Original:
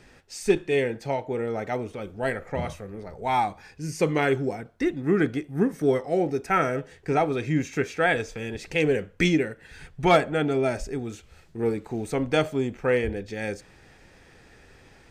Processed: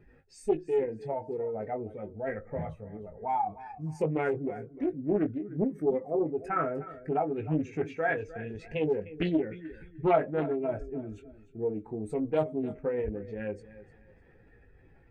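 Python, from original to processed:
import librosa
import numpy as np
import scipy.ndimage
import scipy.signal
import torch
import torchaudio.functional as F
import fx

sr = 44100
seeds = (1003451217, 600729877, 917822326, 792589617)

y = fx.spec_expand(x, sr, power=1.8)
y = fx.peak_eq(y, sr, hz=5700.0, db=-13.0, octaves=1.2)
y = fx.doubler(y, sr, ms=19.0, db=-6.0)
y = fx.echo_feedback(y, sr, ms=303, feedback_pct=30, wet_db=-16.0)
y = fx.doppler_dist(y, sr, depth_ms=0.39)
y = y * 10.0 ** (-6.0 / 20.0)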